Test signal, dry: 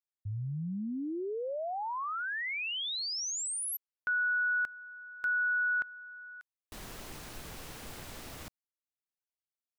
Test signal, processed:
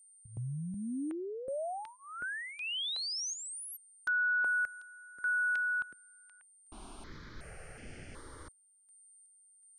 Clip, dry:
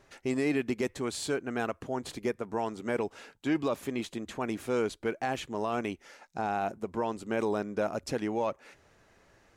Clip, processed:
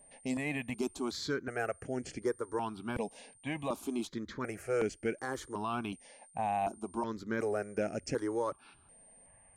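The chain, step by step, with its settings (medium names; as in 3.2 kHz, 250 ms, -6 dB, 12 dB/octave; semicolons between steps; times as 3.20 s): level-controlled noise filter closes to 2 kHz, open at -30 dBFS; whistle 8.9 kHz -57 dBFS; stepped phaser 2.7 Hz 360–3800 Hz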